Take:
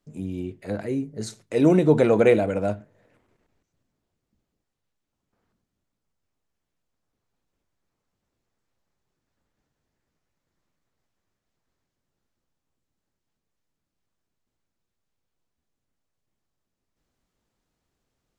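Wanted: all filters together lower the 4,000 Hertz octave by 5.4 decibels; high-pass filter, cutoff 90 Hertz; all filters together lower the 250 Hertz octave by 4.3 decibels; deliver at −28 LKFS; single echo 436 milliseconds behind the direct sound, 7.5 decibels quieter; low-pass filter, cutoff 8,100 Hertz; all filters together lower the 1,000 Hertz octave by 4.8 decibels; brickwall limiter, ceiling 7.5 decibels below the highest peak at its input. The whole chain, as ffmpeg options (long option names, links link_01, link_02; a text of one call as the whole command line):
ffmpeg -i in.wav -af "highpass=90,lowpass=8100,equalizer=frequency=250:width_type=o:gain=-5.5,equalizer=frequency=1000:width_type=o:gain=-7,equalizer=frequency=4000:width_type=o:gain=-6,alimiter=limit=-16dB:level=0:latency=1,aecho=1:1:436:0.422" out.wav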